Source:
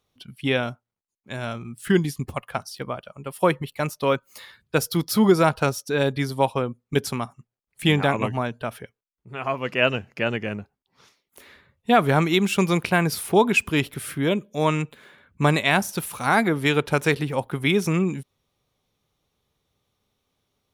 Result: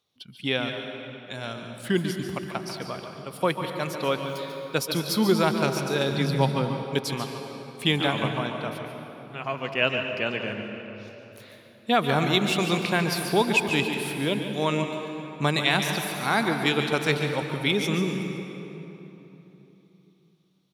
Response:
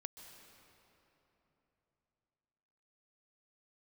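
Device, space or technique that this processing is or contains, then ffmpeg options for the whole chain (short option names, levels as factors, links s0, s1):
PA in a hall: -filter_complex "[0:a]highpass=110,equalizer=f=4000:t=o:w=0.93:g=8,aecho=1:1:143:0.316[s0];[1:a]atrim=start_sample=2205[s1];[s0][s1]afir=irnorm=-1:irlink=0,asettb=1/sr,asplit=3[s2][s3][s4];[s2]atrim=end=6.114[s5];[s3]atrim=start=6.11:end=6.83,asetpts=PTS-STARTPTS,afade=t=in:d=0.004:c=qsin,afade=t=out:st=0.716:d=0.004:c=qsin,equalizer=f=160:t=o:w=0.84:g=11[s6];[s4]atrim=start=6.826[s7];[s5][s6]acrossfade=d=0.004:c1=hsin:c2=qsin[s8];[s8][s7]acrossfade=d=0.004:c1=qsin:c2=hsin"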